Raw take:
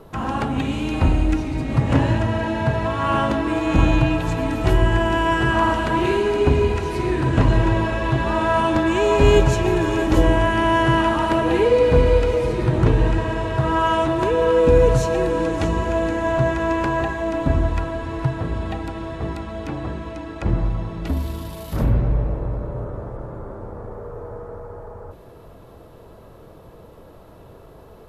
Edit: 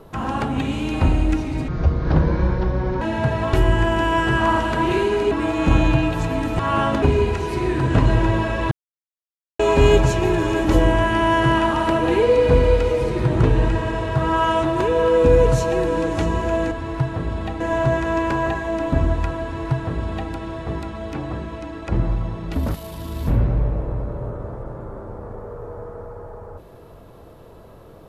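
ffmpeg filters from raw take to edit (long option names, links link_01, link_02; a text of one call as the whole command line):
ffmpeg -i in.wav -filter_complex "[0:a]asplit=13[link_01][link_02][link_03][link_04][link_05][link_06][link_07][link_08][link_09][link_10][link_11][link_12][link_13];[link_01]atrim=end=1.684[link_14];[link_02]atrim=start=1.68:end=2.44,asetpts=PTS-STARTPTS,asetrate=25137,aresample=44100,atrim=end_sample=58800,asetpts=PTS-STARTPTS[link_15];[link_03]atrim=start=2.436:end=2.962[link_16];[link_04]atrim=start=4.668:end=6.452[link_17];[link_05]atrim=start=3.388:end=4.672[link_18];[link_06]atrim=start=2.958:end=3.392[link_19];[link_07]atrim=start=6.448:end=8.14,asetpts=PTS-STARTPTS,afade=type=out:start_time=1.688:duration=0.004:curve=hsin[link_20];[link_08]atrim=start=8.14:end=9.02,asetpts=PTS-STARTPTS,volume=0[link_21];[link_09]atrim=start=9.02:end=16.142,asetpts=PTS-STARTPTS,afade=type=in:duration=0.004:curve=hsin[link_22];[link_10]atrim=start=17.958:end=18.852[link_23];[link_11]atrim=start=16.138:end=21.202[link_24];[link_12]atrim=start=21.198:end=21.812,asetpts=PTS-STARTPTS,areverse[link_25];[link_13]atrim=start=21.808[link_26];[link_14][link_15]acrossfade=duration=0.004:curve1=hsin:curve2=hsin[link_27];[link_27][link_16]acrossfade=duration=0.004:curve1=hsin:curve2=hsin[link_28];[link_28][link_17]acrossfade=duration=0.004:curve1=hsin:curve2=hsin[link_29];[link_29][link_18]acrossfade=duration=0.004:curve1=hsin:curve2=hsin[link_30];[link_30][link_19]acrossfade=duration=0.004:curve1=hsin:curve2=hsin[link_31];[link_20][link_21][link_22]concat=n=3:v=0:a=1[link_32];[link_31][link_32]acrossfade=duration=0.004:curve1=hsin:curve2=hsin[link_33];[link_33][link_23]acrossfade=duration=0.004:curve1=hsin:curve2=hsin[link_34];[link_34][link_24]acrossfade=duration=0.004:curve1=hsin:curve2=hsin[link_35];[link_35][link_25]acrossfade=duration=0.004:curve1=hsin:curve2=hsin[link_36];[link_36][link_26]acrossfade=duration=0.004:curve1=hsin:curve2=hsin" out.wav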